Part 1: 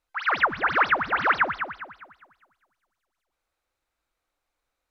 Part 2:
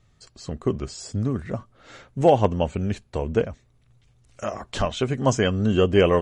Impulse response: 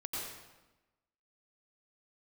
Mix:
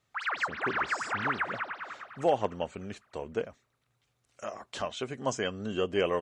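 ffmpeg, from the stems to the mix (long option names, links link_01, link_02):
-filter_complex "[0:a]acompressor=threshold=-30dB:ratio=2,volume=-2.5dB,asplit=2[link_01][link_02];[link_02]volume=-11.5dB[link_03];[1:a]volume=-7.5dB[link_04];[link_03]aecho=0:1:303|606|909|1212|1515|1818|2121:1|0.49|0.24|0.118|0.0576|0.0282|0.0138[link_05];[link_01][link_04][link_05]amix=inputs=3:normalize=0,highpass=frequency=410:poles=1"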